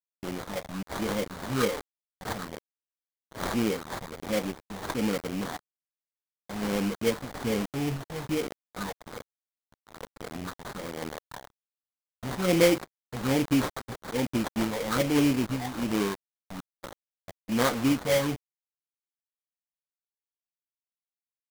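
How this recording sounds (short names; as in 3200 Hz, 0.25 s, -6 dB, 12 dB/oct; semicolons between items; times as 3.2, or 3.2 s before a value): a quantiser's noise floor 6-bit, dither none; phasing stages 6, 1.2 Hz, lowest notch 310–4500 Hz; aliases and images of a low sample rate 2700 Hz, jitter 20%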